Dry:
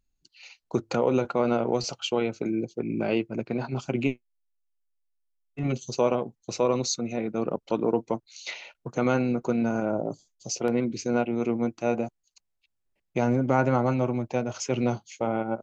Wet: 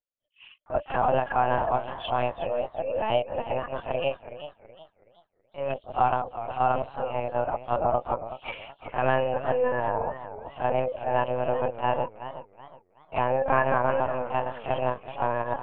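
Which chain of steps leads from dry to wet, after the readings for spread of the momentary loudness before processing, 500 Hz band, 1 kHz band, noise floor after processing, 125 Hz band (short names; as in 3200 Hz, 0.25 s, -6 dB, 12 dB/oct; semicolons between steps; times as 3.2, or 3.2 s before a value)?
9 LU, +0.5 dB, +7.5 dB, -69 dBFS, -5.0 dB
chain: gate -52 dBFS, range -13 dB; reverse echo 35 ms -9.5 dB; mistuned SSB +270 Hz 190–2800 Hz; LPC vocoder at 8 kHz pitch kept; warbling echo 0.371 s, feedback 33%, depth 141 cents, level -12.5 dB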